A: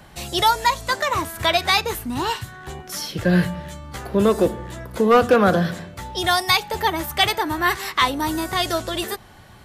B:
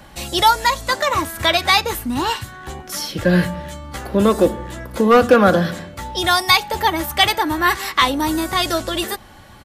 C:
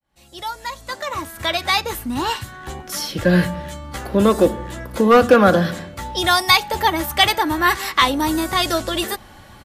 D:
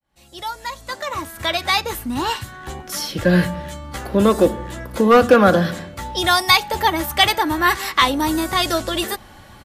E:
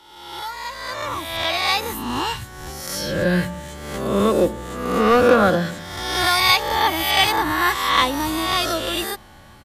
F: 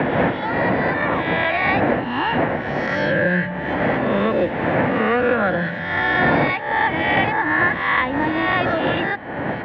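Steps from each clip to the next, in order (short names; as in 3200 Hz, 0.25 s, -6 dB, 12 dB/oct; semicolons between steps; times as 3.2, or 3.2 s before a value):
comb 3.6 ms, depth 31%; gain +3 dB
opening faded in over 2.70 s
nothing audible
spectral swells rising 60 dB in 1.10 s; gain -5 dB
wind noise 560 Hz -21 dBFS; speaker cabinet 130–2500 Hz, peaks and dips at 200 Hz -3 dB, 400 Hz -8 dB, 1200 Hz -7 dB, 1800 Hz +8 dB; three-band squash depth 100%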